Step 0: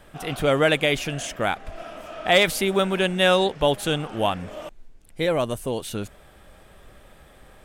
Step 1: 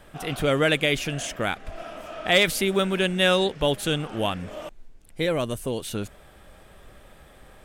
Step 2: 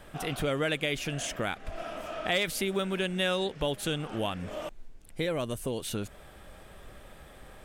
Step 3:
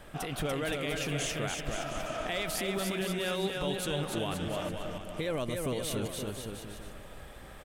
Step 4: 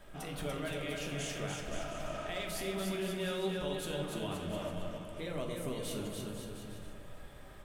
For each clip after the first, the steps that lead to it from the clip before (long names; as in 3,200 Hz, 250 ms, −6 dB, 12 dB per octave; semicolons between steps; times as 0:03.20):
dynamic equaliser 810 Hz, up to −6 dB, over −35 dBFS, Q 1.3
downward compressor 2 to 1, threshold −32 dBFS, peak gain reduction 10 dB
brickwall limiter −24.5 dBFS, peak gain reduction 9.5 dB; bouncing-ball delay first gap 290 ms, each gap 0.8×, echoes 5
surface crackle 160 per second −53 dBFS; on a send at −1.5 dB: convolution reverb RT60 1.2 s, pre-delay 3 ms; on the sum: level −8 dB